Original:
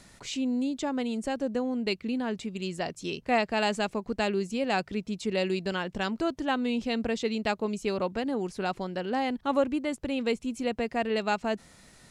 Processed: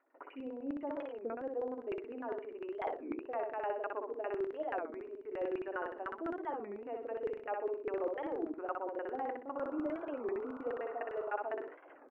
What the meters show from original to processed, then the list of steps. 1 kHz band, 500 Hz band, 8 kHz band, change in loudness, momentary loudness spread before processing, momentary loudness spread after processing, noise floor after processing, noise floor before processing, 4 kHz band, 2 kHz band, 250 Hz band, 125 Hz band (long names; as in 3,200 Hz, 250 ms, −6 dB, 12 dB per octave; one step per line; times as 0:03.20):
−8.0 dB, −7.0 dB, below −35 dB, −9.5 dB, 6 LU, 5 LU, −56 dBFS, −56 dBFS, below −25 dB, −13.0 dB, −13.5 dB, below −20 dB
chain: noise gate with hold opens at −44 dBFS
mains-hum notches 50/100/150/200/250/300/350/400/450 Hz
reversed playback
downward compressor 16 to 1, threshold −39 dBFS, peak gain reduction 20.5 dB
reversed playback
linear-phase brick-wall band-pass 260–3,000 Hz
auto-filter low-pass saw down 9.9 Hz 350–1,700 Hz
on a send: repeating echo 62 ms, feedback 32%, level −3.5 dB
on the sum: sound drawn into the spectrogram noise, 0:09.56–0:11.43, 390–1,500 Hz −54 dBFS
wow of a warped record 33 1/3 rpm, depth 250 cents
level +1.5 dB